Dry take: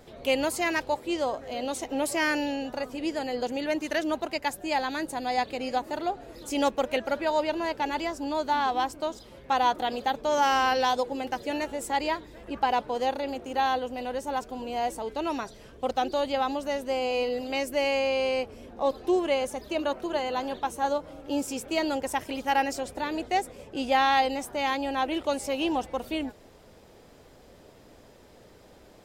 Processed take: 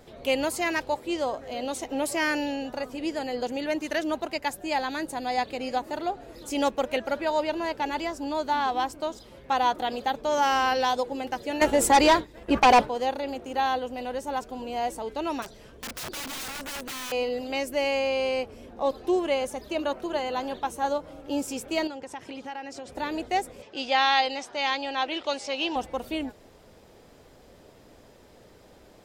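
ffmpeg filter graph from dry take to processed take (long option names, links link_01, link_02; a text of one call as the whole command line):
ffmpeg -i in.wav -filter_complex "[0:a]asettb=1/sr,asplit=3[link_01][link_02][link_03];[link_01]atrim=end=11.614[link_04];[link_02]atrim=start=11.61:end=12.89,asetpts=PTS-STARTPTS,afade=type=in:duration=0.004:curve=qsin,afade=type=out:start_time=1.276:duration=0.004:curve=qsin,agate=range=-33dB:threshold=-38dB:ratio=3:release=100:detection=peak,aeval=exprs='0.237*sin(PI/2*2.82*val(0)/0.237)':channel_layout=same[link_05];[link_03]atrim=start=12.886[link_06];[link_04][link_05]acrossfade=duration=0.004:curve1=hsin:curve2=qsin[link_07];[link_07][link_06]acrossfade=duration=0.004:curve1=qsin:curve2=hsin,asettb=1/sr,asplit=3[link_08][link_09][link_10];[link_08]atrim=end=15.424[link_11];[link_09]atrim=start=15.42:end=17.12,asetpts=PTS-STARTPTS,afade=type=in:duration=0.004:curve=qsin,afade=type=out:start_time=1.696:duration=0.004:curve=qsin,acrossover=split=2900[link_12][link_13];[link_13]acompressor=threshold=-51dB:ratio=4:attack=1:release=60[link_14];[link_12][link_14]amix=inputs=2:normalize=0,aeval=exprs='(mod(33.5*val(0)+1,2)-1)/33.5':channel_layout=same[link_15];[link_10]atrim=start=17.116[link_16];[link_11][link_15]acrossfade=duration=0.004:curve1=hsin:curve2=qsin[link_17];[link_17][link_16]acrossfade=duration=0.004:curve1=qsin:curve2=hsin,asettb=1/sr,asplit=3[link_18][link_19][link_20];[link_18]atrim=end=21.874[link_21];[link_19]atrim=start=21.87:end=22.92,asetpts=PTS-STARTPTS,afade=type=in:duration=0.004:curve=qsin,afade=type=out:start_time=1.046:duration=0.004:curve=qsin,bandreject=frequency=620:width=10,acompressor=threshold=-35dB:ratio=4:attack=3.2:release=140:knee=1:detection=peak,highpass=100,lowpass=6400[link_22];[link_20]atrim=start=22.916[link_23];[link_21][link_22]acrossfade=duration=0.004:curve1=hsin:curve2=qsin[link_24];[link_24][link_23]acrossfade=duration=0.004:curve1=qsin:curve2=hsin,asettb=1/sr,asplit=3[link_25][link_26][link_27];[link_25]atrim=end=23.624[link_28];[link_26]atrim=start=23.62:end=25.76,asetpts=PTS-STARTPTS,afade=type=in:duration=0.004:curve=qsin,afade=type=out:start_time=2.136:duration=0.004:curve=qsin,lowpass=frequency=5000:width=0.5412,lowpass=frequency=5000:width=1.3066,aemphasis=mode=production:type=riaa[link_29];[link_27]atrim=start=25.756[link_30];[link_28][link_29]acrossfade=duration=0.004:curve1=hsin:curve2=qsin[link_31];[link_31][link_30]acrossfade=duration=0.004:curve1=qsin:curve2=hsin" out.wav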